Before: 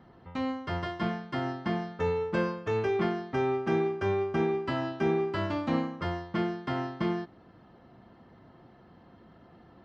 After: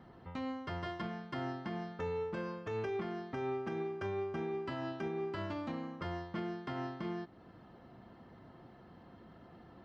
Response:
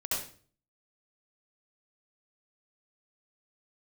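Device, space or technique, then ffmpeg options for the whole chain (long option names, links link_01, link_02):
stacked limiters: -af "alimiter=limit=-21.5dB:level=0:latency=1:release=417,alimiter=level_in=0.5dB:limit=-24dB:level=0:latency=1:release=125,volume=-0.5dB,alimiter=level_in=5dB:limit=-24dB:level=0:latency=1:release=378,volume=-5dB,volume=-1dB"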